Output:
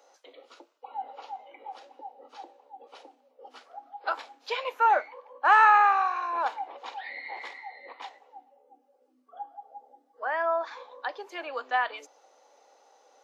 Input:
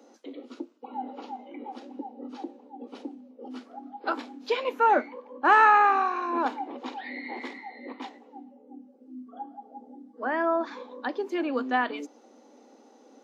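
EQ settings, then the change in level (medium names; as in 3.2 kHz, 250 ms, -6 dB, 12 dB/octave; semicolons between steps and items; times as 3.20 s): high-pass 570 Hz 24 dB/octave; 0.0 dB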